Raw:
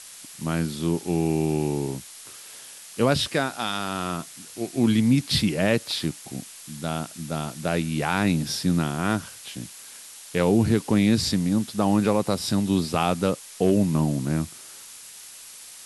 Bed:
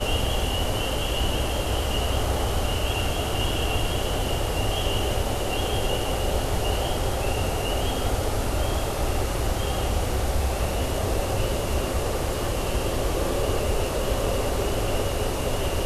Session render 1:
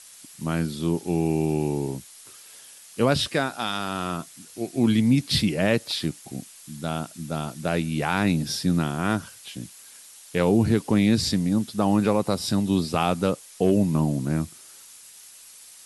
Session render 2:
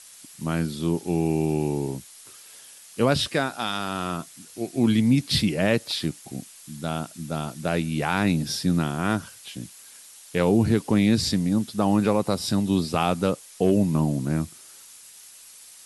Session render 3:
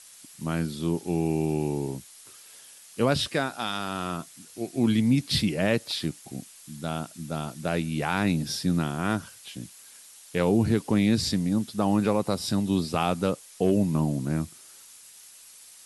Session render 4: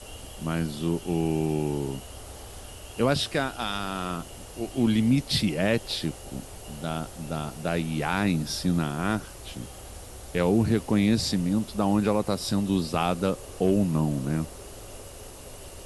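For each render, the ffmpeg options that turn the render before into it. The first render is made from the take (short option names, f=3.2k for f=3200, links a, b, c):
-af "afftdn=nr=6:nf=-44"
-af anull
-af "volume=-2.5dB"
-filter_complex "[1:a]volume=-18.5dB[a];[0:a][a]amix=inputs=2:normalize=0"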